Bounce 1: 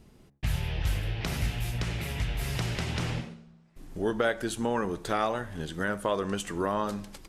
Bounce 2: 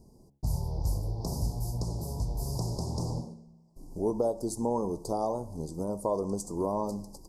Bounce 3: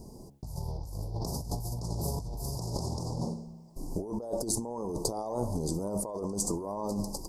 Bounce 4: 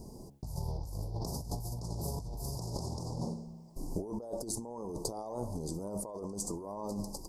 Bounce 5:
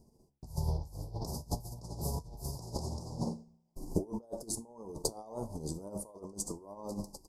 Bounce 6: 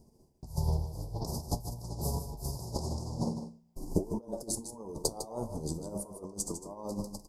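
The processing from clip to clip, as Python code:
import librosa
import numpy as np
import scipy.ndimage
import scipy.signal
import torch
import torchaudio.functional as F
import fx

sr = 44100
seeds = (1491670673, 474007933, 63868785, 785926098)

y1 = scipy.signal.sosfilt(scipy.signal.cheby1(4, 1.0, [980.0, 4800.0], 'bandstop', fs=sr, output='sos'), x)
y2 = fx.over_compress(y1, sr, threshold_db=-38.0, ratio=-1.0)
y2 = fx.low_shelf(y2, sr, hz=360.0, db=-3.5)
y2 = y2 * librosa.db_to_amplitude(6.0)
y3 = fx.rider(y2, sr, range_db=4, speed_s=0.5)
y3 = y3 * librosa.db_to_amplitude(-4.5)
y4 = fx.comb_fb(y3, sr, f0_hz=75.0, decay_s=0.26, harmonics='all', damping=0.0, mix_pct=60)
y4 = fx.upward_expand(y4, sr, threshold_db=-55.0, expansion=2.5)
y4 = y4 * librosa.db_to_amplitude(11.0)
y5 = y4 + 10.0 ** (-10.0 / 20.0) * np.pad(y4, (int(153 * sr / 1000.0), 0))[:len(y4)]
y5 = y5 * librosa.db_to_amplitude(2.5)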